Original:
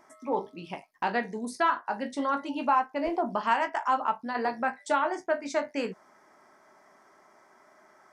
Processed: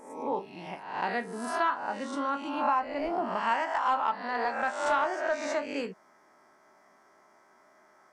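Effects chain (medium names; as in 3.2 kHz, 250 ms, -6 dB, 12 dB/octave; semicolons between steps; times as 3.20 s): reverse spectral sustain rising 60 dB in 0.75 s; 3.74–5.46 s: overdrive pedal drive 8 dB, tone 5.5 kHz, clips at -12 dBFS; trim -4.5 dB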